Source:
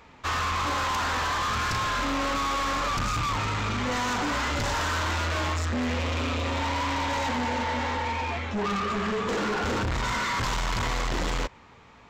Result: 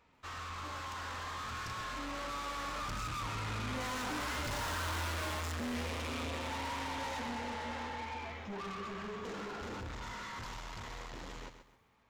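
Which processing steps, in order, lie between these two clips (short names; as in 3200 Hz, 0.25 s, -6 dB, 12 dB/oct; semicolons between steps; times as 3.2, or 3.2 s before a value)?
Doppler pass-by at 5.16, 10 m/s, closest 7.2 m; soft clip -38 dBFS, distortion -7 dB; lo-fi delay 0.131 s, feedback 35%, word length 12-bit, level -9.5 dB; gain +1 dB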